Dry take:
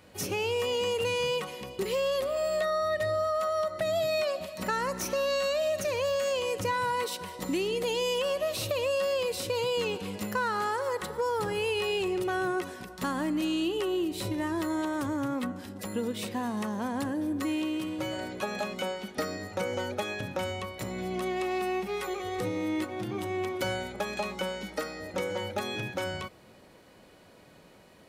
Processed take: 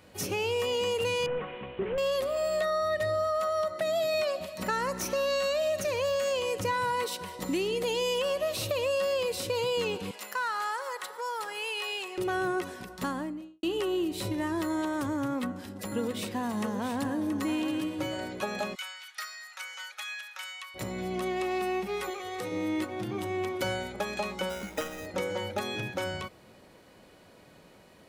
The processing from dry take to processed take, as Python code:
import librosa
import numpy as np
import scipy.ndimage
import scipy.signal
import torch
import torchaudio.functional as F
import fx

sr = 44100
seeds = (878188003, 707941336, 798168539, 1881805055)

y = fx.delta_mod(x, sr, bps=16000, step_db=-42.0, at=(1.26, 1.98))
y = fx.highpass(y, sr, hz=190.0, slope=12, at=(3.73, 4.14))
y = fx.highpass(y, sr, hz=830.0, slope=12, at=(10.11, 12.18))
y = fx.studio_fade_out(y, sr, start_s=12.95, length_s=0.68)
y = fx.echo_single(y, sr, ms=677, db=-8.5, at=(15.24, 18.07))
y = fx.highpass(y, sr, hz=1300.0, slope=24, at=(18.74, 20.74), fade=0.02)
y = fx.low_shelf(y, sr, hz=340.0, db=-11.0, at=(22.1, 22.52))
y = fx.sample_hold(y, sr, seeds[0], rate_hz=4400.0, jitter_pct=0, at=(24.49, 25.05), fade=0.02)